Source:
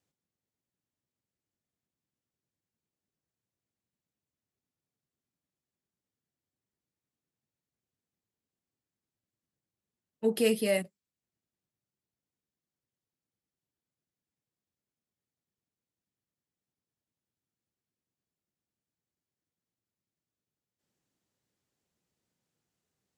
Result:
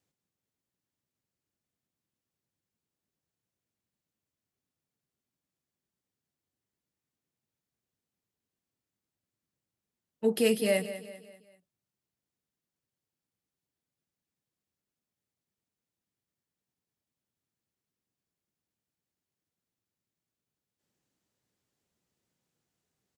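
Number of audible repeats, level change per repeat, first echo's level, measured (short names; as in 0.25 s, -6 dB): 4, -7.5 dB, -13.0 dB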